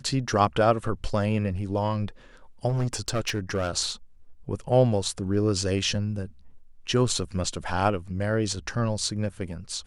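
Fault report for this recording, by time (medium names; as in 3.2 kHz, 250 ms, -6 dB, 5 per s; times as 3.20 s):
2.68–3.69 s: clipped -21.5 dBFS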